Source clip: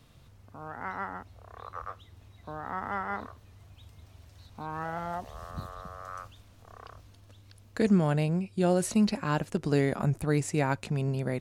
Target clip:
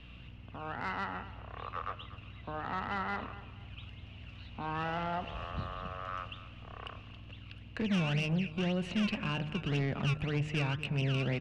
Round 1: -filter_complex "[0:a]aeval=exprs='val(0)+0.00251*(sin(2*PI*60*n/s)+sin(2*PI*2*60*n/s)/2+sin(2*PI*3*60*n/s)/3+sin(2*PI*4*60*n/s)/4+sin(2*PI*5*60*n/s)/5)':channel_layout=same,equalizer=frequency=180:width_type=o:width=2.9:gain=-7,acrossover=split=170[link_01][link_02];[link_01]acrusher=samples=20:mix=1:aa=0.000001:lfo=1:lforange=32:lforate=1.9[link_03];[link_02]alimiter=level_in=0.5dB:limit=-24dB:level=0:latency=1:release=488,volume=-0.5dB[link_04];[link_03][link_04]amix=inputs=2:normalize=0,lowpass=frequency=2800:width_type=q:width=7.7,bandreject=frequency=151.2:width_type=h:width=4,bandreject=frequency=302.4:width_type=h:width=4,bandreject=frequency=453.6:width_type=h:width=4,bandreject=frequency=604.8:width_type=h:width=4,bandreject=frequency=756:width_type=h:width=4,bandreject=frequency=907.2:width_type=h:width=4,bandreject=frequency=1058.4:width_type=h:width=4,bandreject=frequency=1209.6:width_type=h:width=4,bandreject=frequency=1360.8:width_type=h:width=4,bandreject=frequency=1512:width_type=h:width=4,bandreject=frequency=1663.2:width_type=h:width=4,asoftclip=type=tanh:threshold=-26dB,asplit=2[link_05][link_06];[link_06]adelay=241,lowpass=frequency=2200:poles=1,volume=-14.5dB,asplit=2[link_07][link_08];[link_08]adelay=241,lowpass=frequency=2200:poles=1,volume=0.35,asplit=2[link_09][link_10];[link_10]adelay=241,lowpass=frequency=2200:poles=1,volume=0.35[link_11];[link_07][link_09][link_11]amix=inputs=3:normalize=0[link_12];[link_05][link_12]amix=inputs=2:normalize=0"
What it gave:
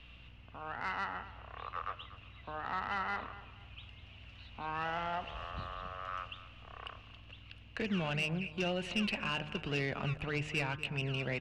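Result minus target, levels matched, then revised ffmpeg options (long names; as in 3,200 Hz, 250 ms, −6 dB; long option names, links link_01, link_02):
250 Hz band −3.0 dB
-filter_complex "[0:a]aeval=exprs='val(0)+0.00251*(sin(2*PI*60*n/s)+sin(2*PI*2*60*n/s)/2+sin(2*PI*3*60*n/s)/3+sin(2*PI*4*60*n/s)/4+sin(2*PI*5*60*n/s)/5)':channel_layout=same,equalizer=frequency=180:width_type=o:width=2.9:gain=2,acrossover=split=170[link_01][link_02];[link_01]acrusher=samples=20:mix=1:aa=0.000001:lfo=1:lforange=32:lforate=1.9[link_03];[link_02]alimiter=level_in=0.5dB:limit=-24dB:level=0:latency=1:release=488,volume=-0.5dB[link_04];[link_03][link_04]amix=inputs=2:normalize=0,lowpass=frequency=2800:width_type=q:width=7.7,bandreject=frequency=151.2:width_type=h:width=4,bandreject=frequency=302.4:width_type=h:width=4,bandreject=frequency=453.6:width_type=h:width=4,bandreject=frequency=604.8:width_type=h:width=4,bandreject=frequency=756:width_type=h:width=4,bandreject=frequency=907.2:width_type=h:width=4,bandreject=frequency=1058.4:width_type=h:width=4,bandreject=frequency=1209.6:width_type=h:width=4,bandreject=frequency=1360.8:width_type=h:width=4,bandreject=frequency=1512:width_type=h:width=4,bandreject=frequency=1663.2:width_type=h:width=4,asoftclip=type=tanh:threshold=-26dB,asplit=2[link_05][link_06];[link_06]adelay=241,lowpass=frequency=2200:poles=1,volume=-14.5dB,asplit=2[link_07][link_08];[link_08]adelay=241,lowpass=frequency=2200:poles=1,volume=0.35,asplit=2[link_09][link_10];[link_10]adelay=241,lowpass=frequency=2200:poles=1,volume=0.35[link_11];[link_07][link_09][link_11]amix=inputs=3:normalize=0[link_12];[link_05][link_12]amix=inputs=2:normalize=0"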